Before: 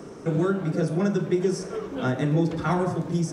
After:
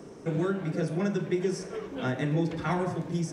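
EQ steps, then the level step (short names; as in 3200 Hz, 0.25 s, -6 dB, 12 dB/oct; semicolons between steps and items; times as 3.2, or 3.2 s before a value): dynamic EQ 2100 Hz, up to +6 dB, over -46 dBFS, Q 0.9; bell 1300 Hz -5 dB 0.35 oct; -5.0 dB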